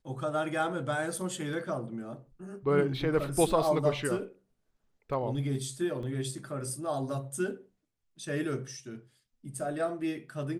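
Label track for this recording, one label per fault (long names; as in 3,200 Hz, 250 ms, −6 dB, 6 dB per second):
6.030000	6.030000	drop-out 2.3 ms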